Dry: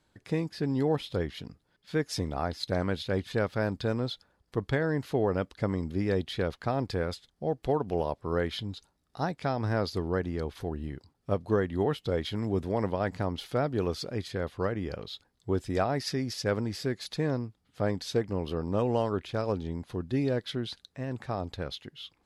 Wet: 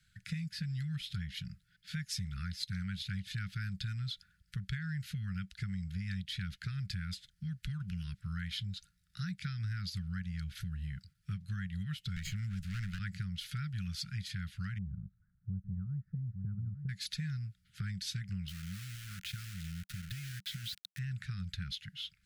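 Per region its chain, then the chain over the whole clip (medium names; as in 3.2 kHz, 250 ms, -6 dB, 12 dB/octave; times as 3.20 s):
12.16–12.99 s: comb filter that takes the minimum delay 0.42 ms + three bands compressed up and down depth 70%
14.78–16.89 s: zero-crossing glitches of -31.5 dBFS + inverse Chebyshev low-pass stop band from 2.9 kHz, stop band 70 dB + delay 857 ms -11 dB
18.48–20.99 s: compression 16:1, threshold -36 dBFS + word length cut 8-bit, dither none
whole clip: Chebyshev band-stop 190–1400 Hz, order 5; dynamic bell 1.4 kHz, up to -5 dB, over -54 dBFS, Q 1.8; compression 4:1, threshold -39 dBFS; trim +3 dB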